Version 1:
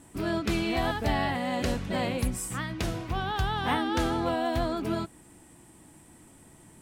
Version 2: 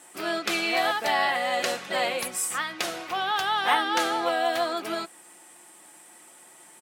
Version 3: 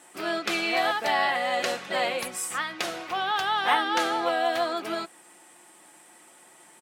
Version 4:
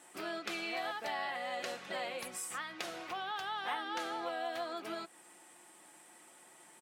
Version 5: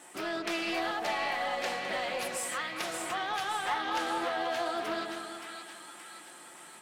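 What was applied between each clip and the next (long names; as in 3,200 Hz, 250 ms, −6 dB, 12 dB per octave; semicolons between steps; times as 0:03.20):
high-pass filter 660 Hz 12 dB per octave; notch filter 980 Hz, Q 16; comb filter 5.6 ms, depth 33%; level +7 dB
high-shelf EQ 7,000 Hz −6 dB
downward compressor 2 to 1, threshold −36 dBFS, peak gain reduction 10 dB; level −5.5 dB
soft clipping −32 dBFS, distortion −18 dB; on a send: echo with a time of its own for lows and highs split 1,200 Hz, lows 201 ms, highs 573 ms, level −5 dB; on the sum: highs frequency-modulated by the lows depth 0.18 ms; level +6.5 dB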